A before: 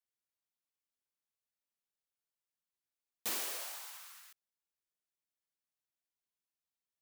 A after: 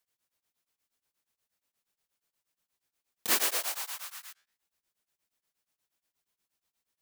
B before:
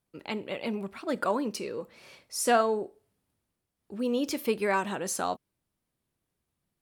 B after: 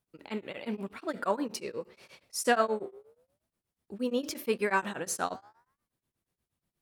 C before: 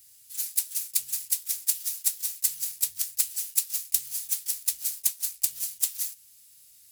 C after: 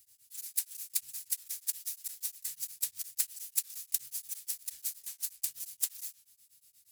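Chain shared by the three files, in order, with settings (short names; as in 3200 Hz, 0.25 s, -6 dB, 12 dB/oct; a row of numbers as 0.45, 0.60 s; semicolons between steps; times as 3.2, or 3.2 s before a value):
dynamic EQ 1700 Hz, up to +5 dB, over -50 dBFS, Q 2.5; flange 0.86 Hz, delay 9.5 ms, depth 7.5 ms, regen -88%; beating tremolo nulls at 8.4 Hz; normalise peaks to -12 dBFS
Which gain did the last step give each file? +17.5, +4.5, -1.0 dB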